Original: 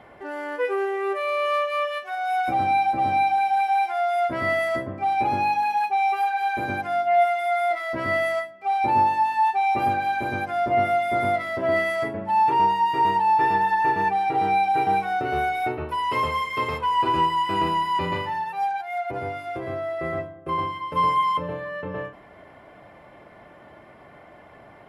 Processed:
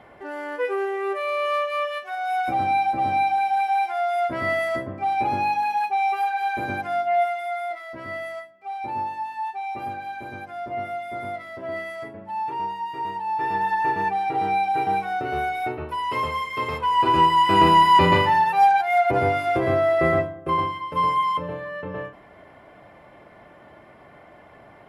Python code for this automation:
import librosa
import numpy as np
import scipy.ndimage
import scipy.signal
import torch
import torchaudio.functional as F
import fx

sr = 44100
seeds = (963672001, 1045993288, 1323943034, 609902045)

y = fx.gain(x, sr, db=fx.line((6.99, -0.5), (7.93, -9.0), (13.2, -9.0), (13.67, -1.5), (16.58, -1.5), (17.82, 9.5), (20.03, 9.5), (20.89, -0.5)))